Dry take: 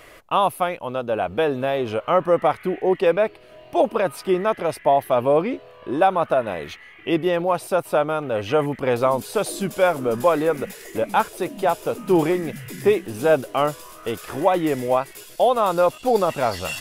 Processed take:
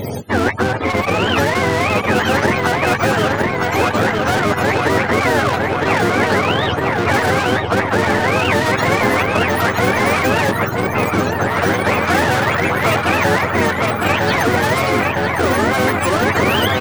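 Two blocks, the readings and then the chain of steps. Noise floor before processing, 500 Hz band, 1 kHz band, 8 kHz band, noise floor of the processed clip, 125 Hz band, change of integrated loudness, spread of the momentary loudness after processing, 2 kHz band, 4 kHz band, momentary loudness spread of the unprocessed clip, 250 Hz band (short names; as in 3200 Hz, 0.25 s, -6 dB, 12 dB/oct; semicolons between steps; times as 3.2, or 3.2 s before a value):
-46 dBFS, +2.0 dB, +6.0 dB, +9.0 dB, -21 dBFS, +13.0 dB, +6.0 dB, 2 LU, +15.5 dB, +12.5 dB, 8 LU, +7.0 dB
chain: spectrum mirrored in octaves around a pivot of 520 Hz; feedback echo 0.958 s, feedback 56%, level -9 dB; spectral gain 10.5–11.48, 490–3900 Hz -8 dB; in parallel at -6.5 dB: crossover distortion -38.5 dBFS; on the sum: spectral compressor 4:1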